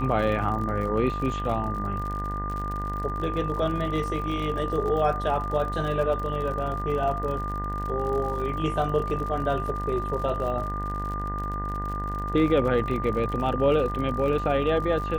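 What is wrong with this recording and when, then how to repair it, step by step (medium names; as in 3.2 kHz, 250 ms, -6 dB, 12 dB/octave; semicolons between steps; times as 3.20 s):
buzz 50 Hz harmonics 40 -32 dBFS
crackle 57 per s -33 dBFS
whine 1.2 kHz -31 dBFS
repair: de-click; de-hum 50 Hz, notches 40; band-stop 1.2 kHz, Q 30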